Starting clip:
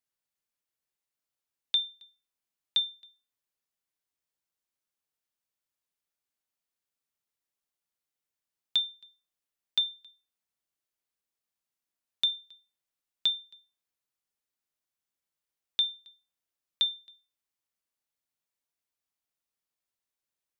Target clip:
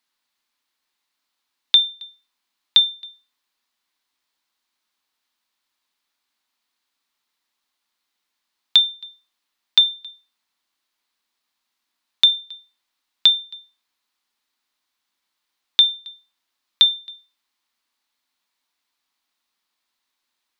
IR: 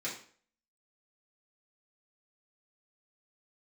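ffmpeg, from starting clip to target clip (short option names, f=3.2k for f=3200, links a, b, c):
-filter_complex "[0:a]equalizer=f=125:t=o:w=1:g=-12,equalizer=f=250:t=o:w=1:g=9,equalizer=f=500:t=o:w=1:g=-3,equalizer=f=1k:t=o:w=1:g=10,equalizer=f=2k:t=o:w=1:g=5,equalizer=f=4k:t=o:w=1:g=11,asplit=2[a][b];[b]acompressor=threshold=-27dB:ratio=6,volume=0dB[c];[a][c]amix=inputs=2:normalize=0"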